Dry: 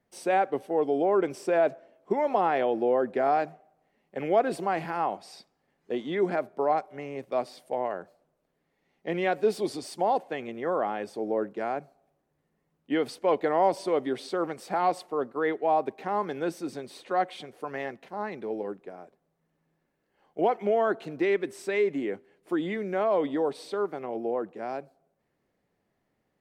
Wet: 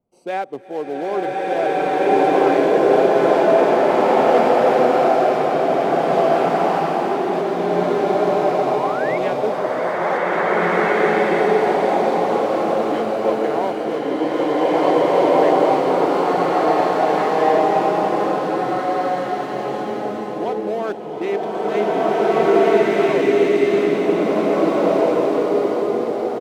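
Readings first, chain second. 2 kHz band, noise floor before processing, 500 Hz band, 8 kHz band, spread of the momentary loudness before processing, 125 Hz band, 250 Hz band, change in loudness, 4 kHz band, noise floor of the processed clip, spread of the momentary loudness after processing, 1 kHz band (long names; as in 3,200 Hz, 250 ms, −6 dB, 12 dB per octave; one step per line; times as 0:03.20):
+12.0 dB, −77 dBFS, +12.0 dB, can't be measured, 11 LU, +12.5 dB, +12.0 dB, +11.0 dB, +12.0 dB, −26 dBFS, 9 LU, +11.5 dB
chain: adaptive Wiener filter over 25 samples
high-shelf EQ 4,000 Hz +9 dB
sound drawn into the spectrogram rise, 0:08.49–0:09.18, 450–2,300 Hz −30 dBFS
single-tap delay 670 ms −13.5 dB
slow-attack reverb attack 1,970 ms, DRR −11.5 dB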